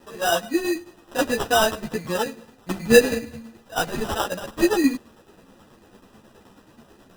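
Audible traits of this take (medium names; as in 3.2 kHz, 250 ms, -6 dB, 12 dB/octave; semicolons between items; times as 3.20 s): a quantiser's noise floor 10-bit, dither triangular; tremolo saw down 9.3 Hz, depth 60%; aliases and images of a low sample rate 2.2 kHz, jitter 0%; a shimmering, thickened sound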